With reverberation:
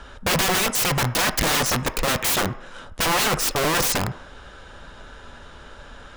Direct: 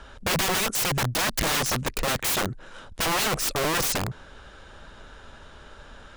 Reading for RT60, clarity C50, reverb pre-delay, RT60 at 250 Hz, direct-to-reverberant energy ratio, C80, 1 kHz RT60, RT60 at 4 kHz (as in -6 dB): 0.60 s, 14.5 dB, 3 ms, 0.40 s, 9.0 dB, 17.5 dB, 0.60 s, 0.60 s